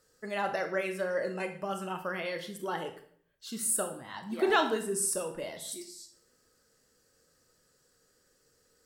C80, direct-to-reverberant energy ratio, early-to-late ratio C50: 13.5 dB, 6.0 dB, 10.0 dB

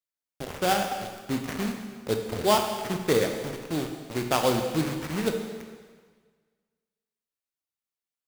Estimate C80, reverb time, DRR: 7.0 dB, 1.6 s, 4.0 dB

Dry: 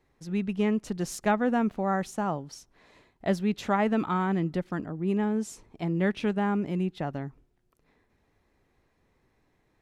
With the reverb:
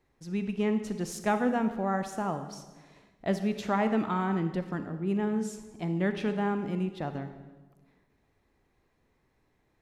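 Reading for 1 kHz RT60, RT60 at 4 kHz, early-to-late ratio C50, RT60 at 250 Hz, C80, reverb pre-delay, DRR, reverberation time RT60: 1.2 s, 1.0 s, 9.5 dB, 1.5 s, 11.5 dB, 34 ms, 8.5 dB, 1.3 s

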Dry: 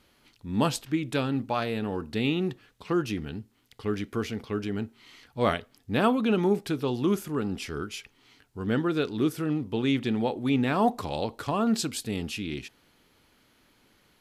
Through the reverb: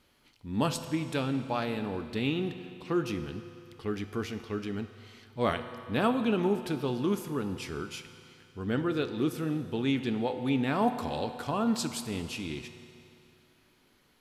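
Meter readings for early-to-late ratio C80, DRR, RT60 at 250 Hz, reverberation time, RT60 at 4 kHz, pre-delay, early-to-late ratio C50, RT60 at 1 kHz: 10.5 dB, 8.5 dB, 2.7 s, 2.7 s, 2.5 s, 8 ms, 10.0 dB, 2.7 s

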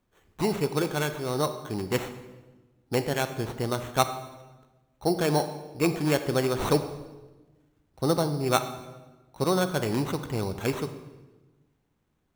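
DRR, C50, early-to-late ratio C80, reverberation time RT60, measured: 9.5 dB, 10.5 dB, 12.5 dB, 1.2 s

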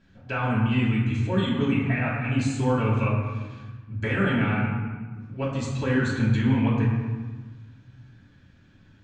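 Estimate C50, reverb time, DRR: 1.5 dB, 1.4 s, -7.5 dB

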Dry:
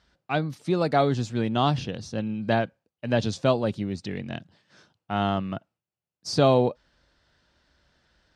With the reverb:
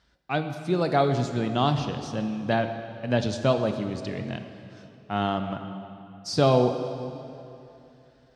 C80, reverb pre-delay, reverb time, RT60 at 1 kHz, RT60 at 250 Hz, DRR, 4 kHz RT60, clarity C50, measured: 8.5 dB, 10 ms, 2.9 s, 2.8 s, 3.0 s, 7.0 dB, 2.2 s, 8.0 dB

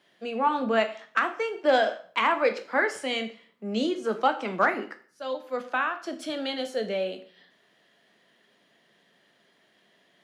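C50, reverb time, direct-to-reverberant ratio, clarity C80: 13.5 dB, 0.45 s, 7.0 dB, 17.0 dB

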